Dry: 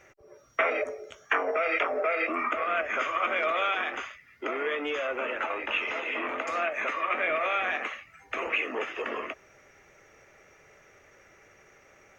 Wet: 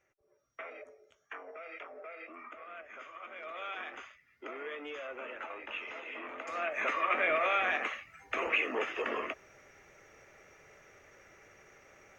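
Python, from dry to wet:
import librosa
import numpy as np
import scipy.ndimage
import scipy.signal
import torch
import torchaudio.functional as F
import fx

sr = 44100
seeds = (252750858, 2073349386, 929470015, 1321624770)

y = fx.gain(x, sr, db=fx.line((3.31, -19.5), (3.78, -11.5), (6.34, -11.5), (6.88, -1.5)))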